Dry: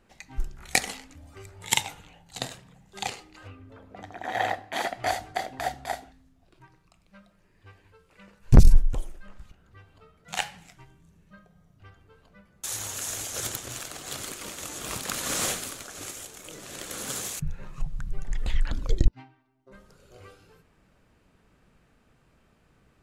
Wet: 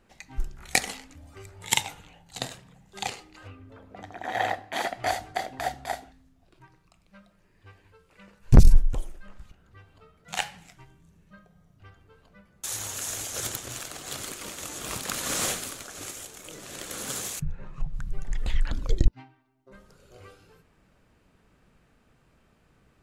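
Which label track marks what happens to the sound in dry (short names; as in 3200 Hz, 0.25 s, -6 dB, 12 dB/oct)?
17.430000	17.930000	LPF 1500 Hz -> 2800 Hz 6 dB/oct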